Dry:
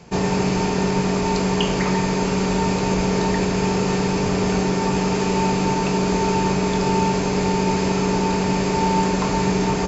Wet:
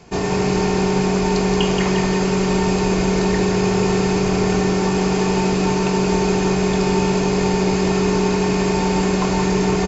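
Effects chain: comb 2.8 ms, depth 31%; feedback echo 0.176 s, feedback 53%, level -6 dB

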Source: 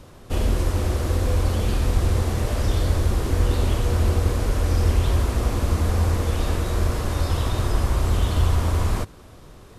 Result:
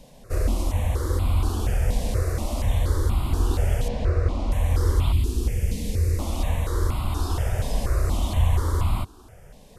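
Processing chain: 3.88–4.52 LPF 3500 Hz 12 dB/oct; 5.12–6.19 band shelf 950 Hz -16 dB; step phaser 4.2 Hz 350–1700 Hz

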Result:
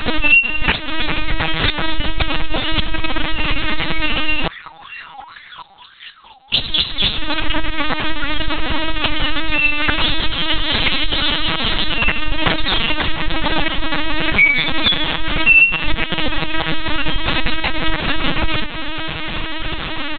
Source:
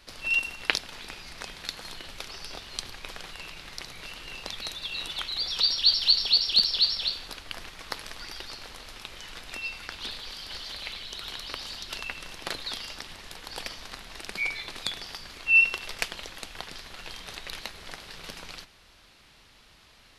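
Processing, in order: low shelf 110 Hz +9.5 dB; comb 6.2 ms, depth 74%; compressor 5:1, threshold -42 dBFS, peak gain reduction 24.5 dB; 4.46–6.52 wah 2.9 Hz -> 1.2 Hz 770–1900 Hz, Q 8.3; LPC vocoder at 8 kHz pitch kept; maximiser +31.5 dB; gain -1 dB

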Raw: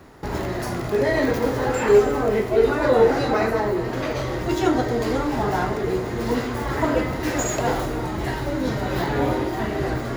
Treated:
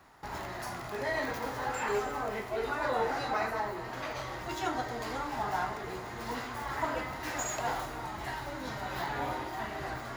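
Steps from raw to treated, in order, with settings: resonant low shelf 610 Hz -8 dB, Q 1.5; gain -8.5 dB

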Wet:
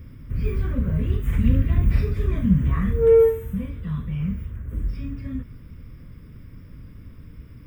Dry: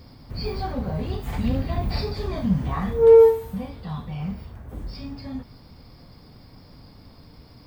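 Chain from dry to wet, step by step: low shelf 130 Hz +9 dB; fixed phaser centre 1900 Hz, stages 4; gain +1 dB

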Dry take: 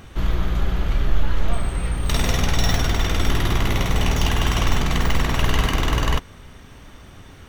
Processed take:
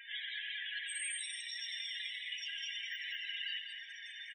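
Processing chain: steep high-pass 1600 Hz 96 dB/oct; dynamic EQ 3400 Hz, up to +4 dB, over -43 dBFS, Q 1; compressor 12:1, threshold -38 dBFS, peak gain reduction 18 dB; limiter -30.5 dBFS, peak gain reduction 7 dB; vocal rider within 4 dB 2 s; loudest bins only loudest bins 16; plain phase-vocoder stretch 0.58×; on a send: echo 0.198 s -6.5 dB; on the sum: Schroeder reverb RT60 3.8 s, combs from 25 ms, DRR 14.5 dB; gain +9 dB

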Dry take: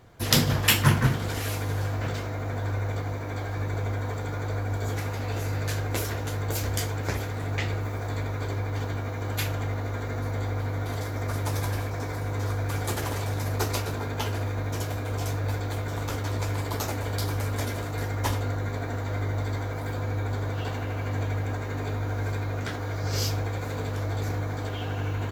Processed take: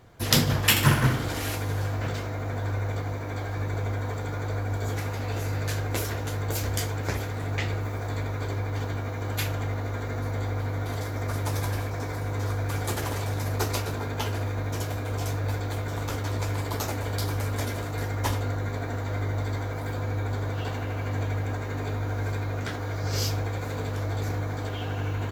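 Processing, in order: 0.7–1.56 flutter echo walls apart 10.9 m, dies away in 0.6 s

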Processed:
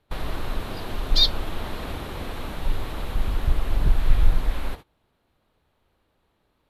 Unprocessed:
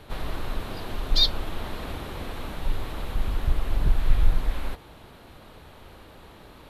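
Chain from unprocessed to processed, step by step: gate -36 dBFS, range -24 dB; gain +2 dB

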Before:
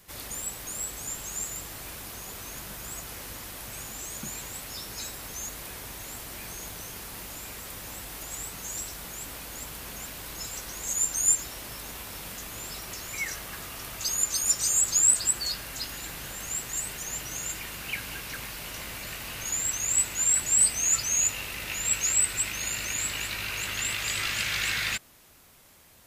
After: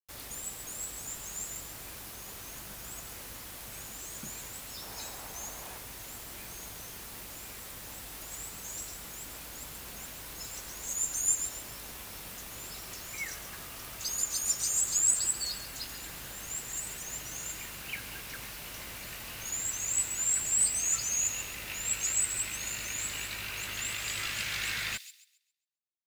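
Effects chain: 4.82–5.78 bell 810 Hz +7.5 dB 1.1 oct; bit-crush 7-bit; thin delay 0.135 s, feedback 31%, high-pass 4600 Hz, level -8 dB; gain -5.5 dB

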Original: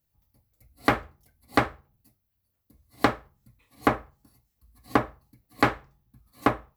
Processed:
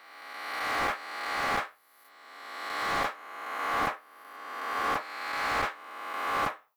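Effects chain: spectral swells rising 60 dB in 1.66 s; Bessel high-pass 1200 Hz, order 2; slew limiter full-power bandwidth 100 Hz; gain -3 dB

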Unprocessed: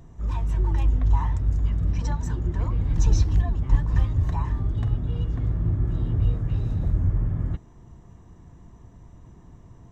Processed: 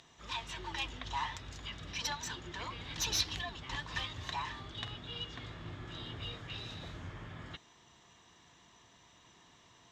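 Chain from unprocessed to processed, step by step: tracing distortion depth 0.07 ms; band-pass 3600 Hz, Q 2.1; gain +14.5 dB

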